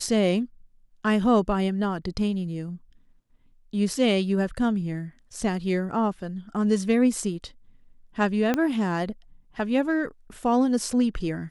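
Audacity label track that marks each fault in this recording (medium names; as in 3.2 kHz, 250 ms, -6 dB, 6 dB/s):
8.540000	8.540000	pop -11 dBFS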